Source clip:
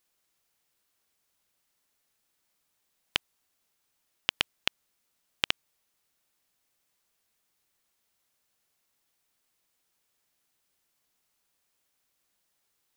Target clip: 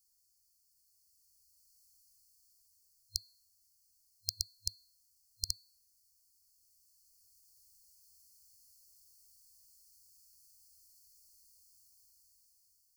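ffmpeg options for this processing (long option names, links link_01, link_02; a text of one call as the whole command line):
ffmpeg -i in.wav -af "dynaudnorm=framelen=630:gausssize=5:maxgain=10dB,afftfilt=real='re*(1-between(b*sr/4096,100,4200))':imag='im*(1-between(b*sr/4096,100,4200))':win_size=4096:overlap=0.75,bandreject=frequency=249.5:width_type=h:width=4,bandreject=frequency=499:width_type=h:width=4,bandreject=frequency=748.5:width_type=h:width=4,bandreject=frequency=998:width_type=h:width=4,bandreject=frequency=1247.5:width_type=h:width=4,bandreject=frequency=1497:width_type=h:width=4,bandreject=frequency=1746.5:width_type=h:width=4,bandreject=frequency=1996:width_type=h:width=4,bandreject=frequency=2245.5:width_type=h:width=4,bandreject=frequency=2495:width_type=h:width=4,bandreject=frequency=2744.5:width_type=h:width=4,bandreject=frequency=2994:width_type=h:width=4,bandreject=frequency=3243.5:width_type=h:width=4,bandreject=frequency=3493:width_type=h:width=4,bandreject=frequency=3742.5:width_type=h:width=4,bandreject=frequency=3992:width_type=h:width=4,bandreject=frequency=4241.5:width_type=h:width=4,bandreject=frequency=4491:width_type=h:width=4,volume=3.5dB" out.wav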